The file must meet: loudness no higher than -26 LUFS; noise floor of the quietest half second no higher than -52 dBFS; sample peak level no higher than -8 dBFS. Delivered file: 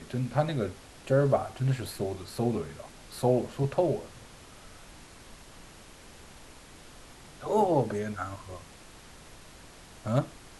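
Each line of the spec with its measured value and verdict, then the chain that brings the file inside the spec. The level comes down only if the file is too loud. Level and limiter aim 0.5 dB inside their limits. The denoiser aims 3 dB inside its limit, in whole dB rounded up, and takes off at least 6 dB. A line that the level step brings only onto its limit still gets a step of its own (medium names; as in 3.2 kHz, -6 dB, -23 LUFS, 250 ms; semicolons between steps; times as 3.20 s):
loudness -29.5 LUFS: pass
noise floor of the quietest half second -50 dBFS: fail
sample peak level -11.5 dBFS: pass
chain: noise reduction 6 dB, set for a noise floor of -50 dBFS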